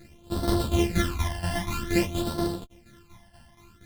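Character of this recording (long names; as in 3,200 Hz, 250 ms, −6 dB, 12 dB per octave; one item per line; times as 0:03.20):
a buzz of ramps at a fixed pitch in blocks of 128 samples
phaser sweep stages 12, 0.52 Hz, lowest notch 390–2,400 Hz
tremolo saw down 4.2 Hz, depth 75%
a shimmering, thickened sound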